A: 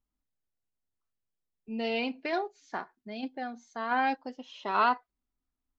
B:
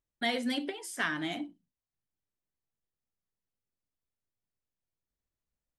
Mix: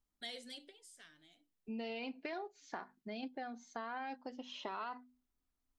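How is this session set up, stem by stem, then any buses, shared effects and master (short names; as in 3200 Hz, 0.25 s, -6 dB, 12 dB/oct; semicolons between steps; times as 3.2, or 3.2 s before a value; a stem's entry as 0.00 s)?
0.0 dB, 0.00 s, no send, notches 50/100/150/200/250 Hz; limiter -23.5 dBFS, peak gain reduction 9 dB
-16.5 dB, 0.00 s, no send, graphic EQ 125/250/500/1000/4000/8000 Hz +4/-6/+5/-7/+9/+10 dB; auto duck -23 dB, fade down 1.35 s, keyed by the first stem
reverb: off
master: compressor 4:1, threshold -41 dBFS, peak gain reduction 11 dB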